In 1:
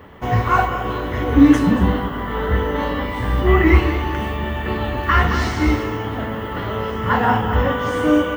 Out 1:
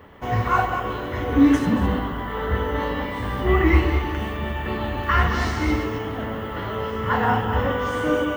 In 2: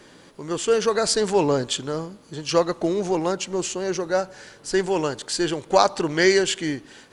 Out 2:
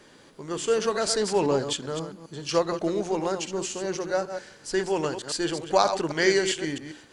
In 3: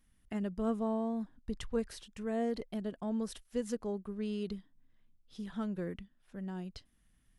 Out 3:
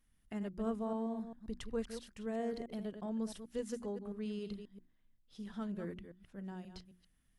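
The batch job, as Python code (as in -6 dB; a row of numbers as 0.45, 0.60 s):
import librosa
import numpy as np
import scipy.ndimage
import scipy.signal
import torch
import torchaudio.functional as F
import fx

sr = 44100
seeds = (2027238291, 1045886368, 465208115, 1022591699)

y = fx.reverse_delay(x, sr, ms=133, wet_db=-8.5)
y = fx.hum_notches(y, sr, base_hz=60, count=6)
y = y * librosa.db_to_amplitude(-4.0)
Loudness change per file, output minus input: -4.0, -4.0, -4.0 LU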